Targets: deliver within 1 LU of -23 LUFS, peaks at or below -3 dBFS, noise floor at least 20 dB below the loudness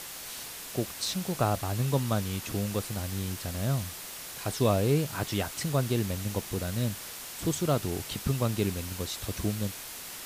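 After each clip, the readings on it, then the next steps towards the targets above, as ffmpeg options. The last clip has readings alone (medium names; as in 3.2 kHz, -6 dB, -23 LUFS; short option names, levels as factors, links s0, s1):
noise floor -42 dBFS; noise floor target -51 dBFS; loudness -31.0 LUFS; peak level -13.0 dBFS; loudness target -23.0 LUFS
-> -af "afftdn=nr=9:nf=-42"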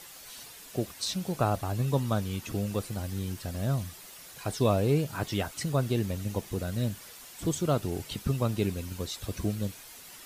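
noise floor -48 dBFS; noise floor target -51 dBFS
-> -af "afftdn=nr=6:nf=-48"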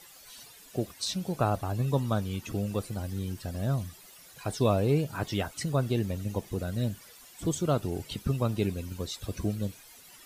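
noise floor -53 dBFS; loudness -31.0 LUFS; peak level -13.5 dBFS; loudness target -23.0 LUFS
-> -af "volume=2.51"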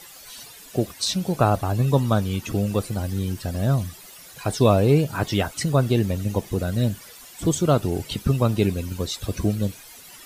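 loudness -23.0 LUFS; peak level -5.5 dBFS; noise floor -45 dBFS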